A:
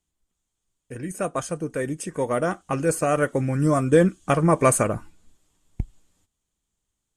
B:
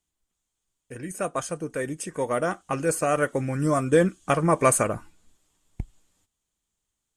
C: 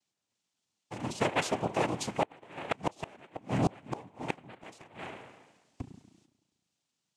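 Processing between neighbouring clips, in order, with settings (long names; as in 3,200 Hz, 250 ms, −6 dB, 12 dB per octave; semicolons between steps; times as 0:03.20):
low-shelf EQ 410 Hz −5 dB
spring reverb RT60 1.2 s, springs 34 ms, chirp 50 ms, DRR 11 dB; cochlear-implant simulation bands 4; gate with flip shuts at −15 dBFS, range −30 dB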